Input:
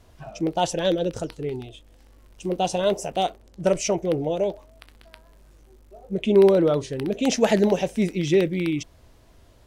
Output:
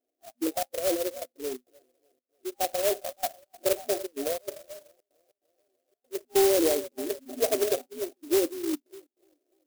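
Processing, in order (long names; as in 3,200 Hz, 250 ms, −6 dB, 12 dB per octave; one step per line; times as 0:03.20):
wavefolder on the positive side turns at −14 dBFS
on a send: feedback echo with a high-pass in the loop 296 ms, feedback 68%, high-pass 310 Hz, level −13 dB
on the sum: gate pattern "xxx.xx.xx" 144 BPM −24 dB
noise reduction from a noise print of the clip's start 19 dB
brick-wall band-pass 240–800 Hz
converter with an unsteady clock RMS 0.13 ms
level −3.5 dB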